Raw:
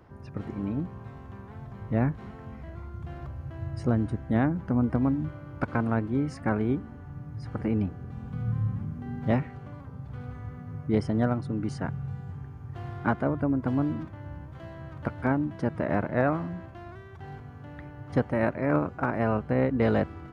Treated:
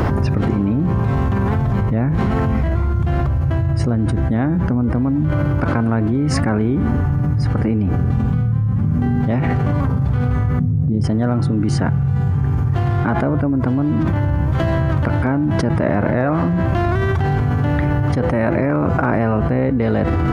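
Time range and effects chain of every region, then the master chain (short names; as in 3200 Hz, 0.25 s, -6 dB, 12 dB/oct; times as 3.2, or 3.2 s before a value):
10.59–11.04 EQ curve 210 Hz 0 dB, 1500 Hz -26 dB, 5600 Hz -14 dB + negative-ratio compressor -32 dBFS, ratio -0.5
whole clip: low shelf 220 Hz +4.5 dB; de-hum 167.7 Hz, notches 24; fast leveller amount 100%; gain +1.5 dB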